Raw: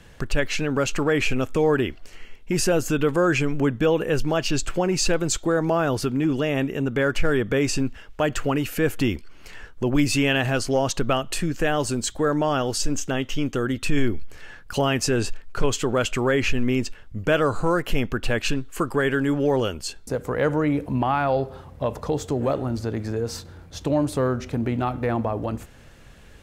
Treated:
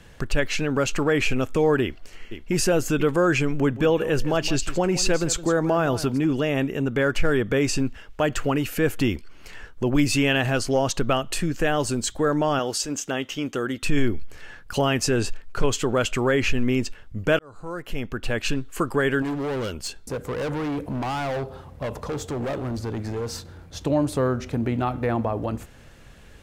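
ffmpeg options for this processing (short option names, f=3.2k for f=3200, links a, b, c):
-filter_complex "[0:a]asplit=2[a][b];[b]afade=t=in:st=1.82:d=0.01,afade=t=out:st=2.53:d=0.01,aecho=0:1:490|980:0.316228|0.0474342[c];[a][c]amix=inputs=2:normalize=0,asplit=3[d][e][f];[d]afade=t=out:st=3.62:d=0.02[g];[e]aecho=1:1:165:0.188,afade=t=in:st=3.62:d=0.02,afade=t=out:st=6.17:d=0.02[h];[f]afade=t=in:st=6.17:d=0.02[i];[g][h][i]amix=inputs=3:normalize=0,asettb=1/sr,asplit=3[j][k][l];[j]atrim=end=12.594[m];[k]atrim=start=12.59:end=13.83,asetpts=PTS-STARTPTS,afade=t=in:d=0.004:c=qsin,afade=t=out:st=1.236:d=0.004:c=qsin,highpass=f=270:p=1[n];[l]atrim=start=13.826[o];[m][n]acrossfade=d=0.004:c1=hsin:c2=qsin[p];[p][o]acrossfade=d=0.004:c1=qsin:c2=hsin,asettb=1/sr,asplit=3[q][r][s];[q]atrim=end=19.224[t];[r]atrim=start=19.22:end=23.35,asetpts=PTS-STARTPTS,afade=t=in:d=0.004:c=qsin,afade=t=out:st=4.126:d=0.004:c=qsin,asoftclip=type=hard:threshold=-25dB[u];[s]atrim=start=23.346[v];[t][u]acrossfade=d=0.004:c1=hsin:c2=qsin[w];[w][v]acrossfade=d=0.004:c1=qsin:c2=hsin,asplit=2[x][y];[x]atrim=end=17.39,asetpts=PTS-STARTPTS,afade=t=out:st=17.386:d=0.004:c=hsin[z];[y]atrim=start=17.39,asetpts=PTS-STARTPTS,afade=t=in:d=1.24[aa];[z][aa]concat=n=2:v=0:a=1"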